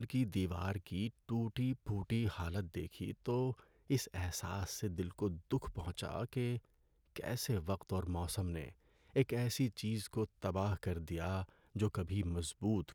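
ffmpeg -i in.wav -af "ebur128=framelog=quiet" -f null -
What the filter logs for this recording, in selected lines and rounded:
Integrated loudness:
  I:         -39.5 LUFS
  Threshold: -49.7 LUFS
Loudness range:
  LRA:         2.3 LU
  Threshold: -59.9 LUFS
  LRA low:   -41.2 LUFS
  LRA high:  -38.9 LUFS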